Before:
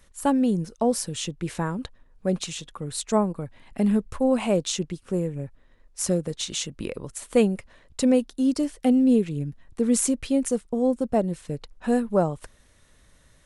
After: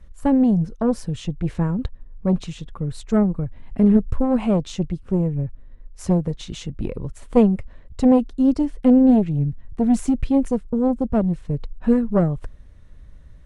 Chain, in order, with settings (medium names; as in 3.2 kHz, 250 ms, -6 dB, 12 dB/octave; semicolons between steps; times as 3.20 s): RIAA curve playback; Chebyshev shaper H 2 -8 dB, 8 -42 dB, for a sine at -4.5 dBFS; trim -1 dB